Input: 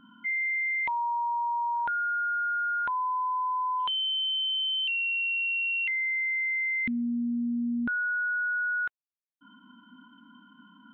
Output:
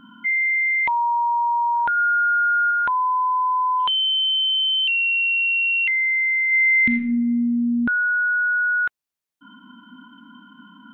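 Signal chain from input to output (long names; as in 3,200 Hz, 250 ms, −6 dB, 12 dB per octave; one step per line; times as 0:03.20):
0:01.97–0:02.71: high-shelf EQ 3,000 Hz +8.5 dB
0:06.42–0:06.97: thrown reverb, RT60 0.88 s, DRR 3.5 dB
level +8.5 dB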